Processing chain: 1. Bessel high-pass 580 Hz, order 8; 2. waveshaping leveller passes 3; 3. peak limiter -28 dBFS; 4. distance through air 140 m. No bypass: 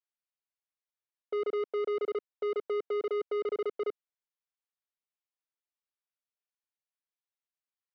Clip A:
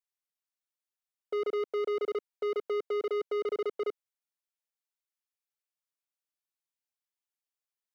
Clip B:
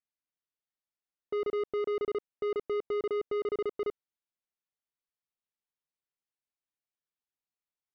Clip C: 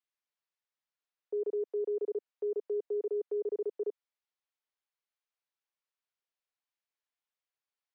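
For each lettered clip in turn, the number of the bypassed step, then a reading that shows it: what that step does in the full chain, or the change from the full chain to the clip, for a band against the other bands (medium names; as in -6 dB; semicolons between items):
4, 4 kHz band +2.0 dB; 1, 250 Hz band +2.0 dB; 2, crest factor change +2.0 dB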